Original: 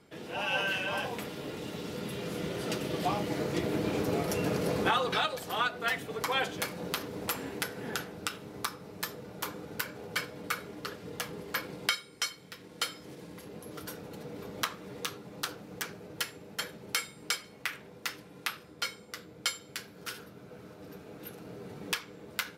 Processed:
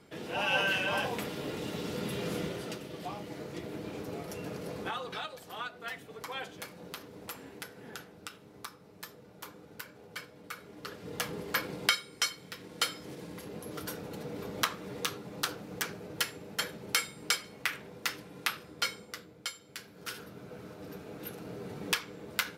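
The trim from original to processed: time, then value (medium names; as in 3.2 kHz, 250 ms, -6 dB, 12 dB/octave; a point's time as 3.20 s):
2.35 s +2 dB
2.86 s -9.5 dB
10.52 s -9.5 dB
11.23 s +2.5 dB
18.99 s +2.5 dB
19.52 s -7.5 dB
20.33 s +2.5 dB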